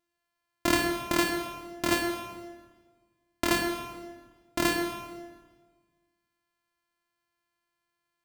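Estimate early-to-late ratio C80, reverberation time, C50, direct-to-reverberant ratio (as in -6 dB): 6.5 dB, 1.5 s, 4.5 dB, 3.0 dB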